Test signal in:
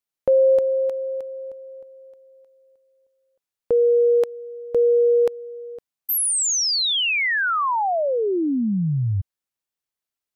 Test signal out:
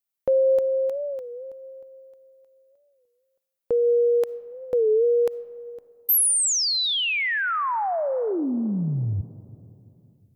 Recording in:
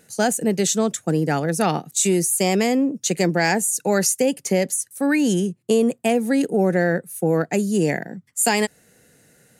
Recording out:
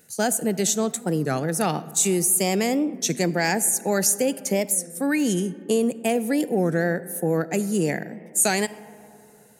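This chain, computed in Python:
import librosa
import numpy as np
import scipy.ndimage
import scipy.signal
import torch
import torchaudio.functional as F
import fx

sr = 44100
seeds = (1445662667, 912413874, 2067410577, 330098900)

y = fx.high_shelf(x, sr, hz=11000.0, db=11.5)
y = fx.rev_freeverb(y, sr, rt60_s=2.8, hf_ratio=0.3, predelay_ms=15, drr_db=16.5)
y = fx.record_warp(y, sr, rpm=33.33, depth_cents=160.0)
y = y * librosa.db_to_amplitude(-3.5)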